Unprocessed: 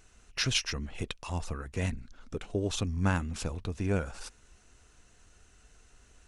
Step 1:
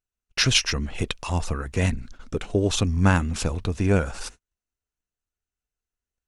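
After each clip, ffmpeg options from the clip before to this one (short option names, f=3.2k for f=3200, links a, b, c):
-af "agate=range=-41dB:threshold=-49dB:ratio=16:detection=peak,volume=9dB"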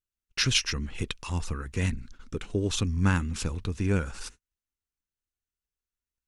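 -af "equalizer=f=660:t=o:w=0.72:g=-10.5,volume=-4.5dB"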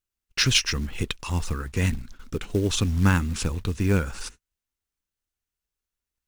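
-af "acrusher=bits=6:mode=log:mix=0:aa=0.000001,volume=4dB"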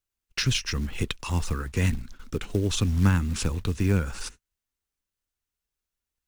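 -filter_complex "[0:a]acrossover=split=210[a][b];[b]acompressor=threshold=-25dB:ratio=6[c];[a][c]amix=inputs=2:normalize=0"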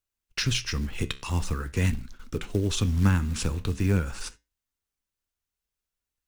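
-af "flanger=delay=8.8:depth=6:regen=-79:speed=0.45:shape=sinusoidal,volume=3.5dB"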